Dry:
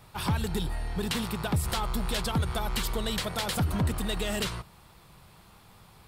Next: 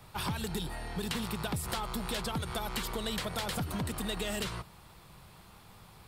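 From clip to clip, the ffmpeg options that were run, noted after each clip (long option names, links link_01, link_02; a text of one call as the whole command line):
ffmpeg -i in.wav -filter_complex "[0:a]acrossover=split=130|2500[link_01][link_02][link_03];[link_01]acompressor=threshold=-42dB:ratio=4[link_04];[link_02]acompressor=threshold=-34dB:ratio=4[link_05];[link_03]acompressor=threshold=-38dB:ratio=4[link_06];[link_04][link_05][link_06]amix=inputs=3:normalize=0" out.wav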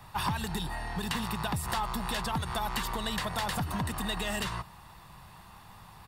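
ffmpeg -i in.wav -af "equalizer=frequency=1200:width_type=o:width=1.4:gain=6,aecho=1:1:1.1:0.39" out.wav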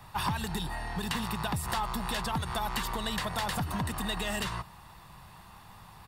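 ffmpeg -i in.wav -af anull out.wav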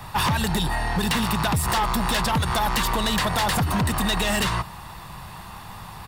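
ffmpeg -i in.wav -af "aeval=exprs='0.158*sin(PI/2*3.16*val(0)/0.158)':channel_layout=same,volume=-1.5dB" out.wav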